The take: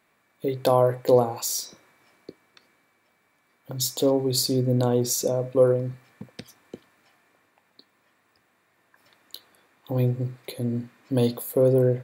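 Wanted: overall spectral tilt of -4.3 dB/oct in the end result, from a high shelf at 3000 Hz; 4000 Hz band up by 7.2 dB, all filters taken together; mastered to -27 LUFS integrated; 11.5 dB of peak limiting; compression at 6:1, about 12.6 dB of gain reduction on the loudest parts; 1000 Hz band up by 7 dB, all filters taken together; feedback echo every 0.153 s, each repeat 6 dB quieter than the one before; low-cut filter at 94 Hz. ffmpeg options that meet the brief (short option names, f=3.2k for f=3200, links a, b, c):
-af "highpass=94,equalizer=f=1k:t=o:g=8.5,highshelf=f=3k:g=4,equalizer=f=4k:t=o:g=5,acompressor=threshold=-24dB:ratio=6,alimiter=limit=-21.5dB:level=0:latency=1,aecho=1:1:153|306|459|612|765|918:0.501|0.251|0.125|0.0626|0.0313|0.0157,volume=4dB"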